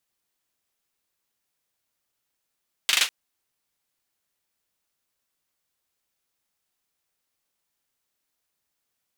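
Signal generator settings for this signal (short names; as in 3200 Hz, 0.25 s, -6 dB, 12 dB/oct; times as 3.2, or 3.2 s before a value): hand clap length 0.20 s, apart 40 ms, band 2900 Hz, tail 0.20 s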